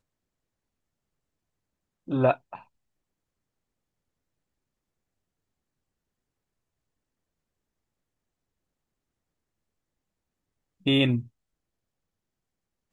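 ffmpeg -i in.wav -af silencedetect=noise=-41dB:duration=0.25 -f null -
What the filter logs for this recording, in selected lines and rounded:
silence_start: 0.00
silence_end: 2.08 | silence_duration: 2.08
silence_start: 2.59
silence_end: 10.86 | silence_duration: 8.27
silence_start: 11.26
silence_end: 12.93 | silence_duration: 1.67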